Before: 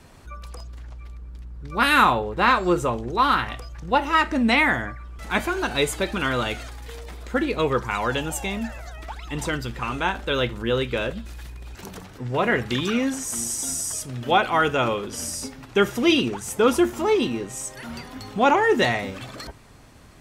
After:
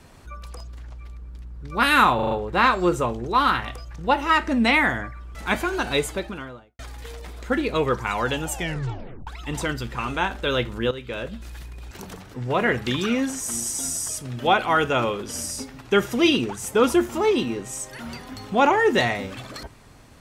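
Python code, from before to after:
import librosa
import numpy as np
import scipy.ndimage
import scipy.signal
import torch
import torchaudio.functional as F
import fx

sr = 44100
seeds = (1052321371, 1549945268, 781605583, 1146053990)

y = fx.studio_fade_out(x, sr, start_s=5.71, length_s=0.92)
y = fx.edit(y, sr, fx.stutter(start_s=2.15, slice_s=0.04, count=5),
    fx.tape_stop(start_s=8.39, length_s=0.72),
    fx.fade_in_from(start_s=10.75, length_s=0.59, floor_db=-13.5), tone=tone)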